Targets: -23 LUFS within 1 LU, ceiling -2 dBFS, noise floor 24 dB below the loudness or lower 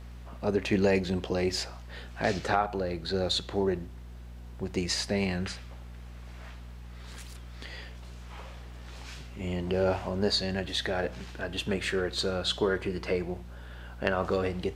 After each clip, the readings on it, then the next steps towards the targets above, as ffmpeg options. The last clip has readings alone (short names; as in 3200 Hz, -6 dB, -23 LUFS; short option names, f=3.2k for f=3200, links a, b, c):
hum 60 Hz; harmonics up to 240 Hz; hum level -42 dBFS; loudness -30.0 LUFS; peak -9.5 dBFS; loudness target -23.0 LUFS
-> -af "bandreject=f=60:t=h:w=4,bandreject=f=120:t=h:w=4,bandreject=f=180:t=h:w=4,bandreject=f=240:t=h:w=4"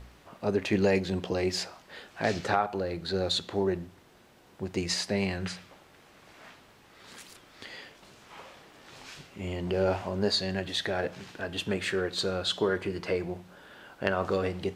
hum none; loudness -30.0 LUFS; peak -9.5 dBFS; loudness target -23.0 LUFS
-> -af "volume=7dB"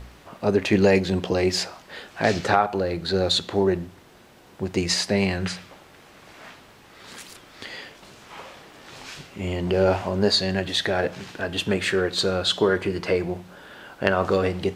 loudness -23.0 LUFS; peak -2.5 dBFS; noise floor -51 dBFS